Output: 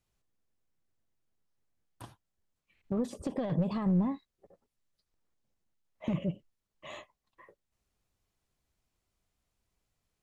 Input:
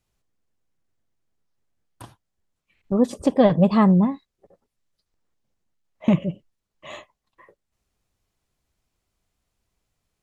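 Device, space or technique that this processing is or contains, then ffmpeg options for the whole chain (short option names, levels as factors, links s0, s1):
de-esser from a sidechain: -filter_complex "[0:a]asplit=2[s0][s1];[s1]highpass=f=4600:p=1,apad=whole_len=450948[s2];[s0][s2]sidechaincompress=threshold=0.00794:ratio=12:attack=0.52:release=28,volume=0.562"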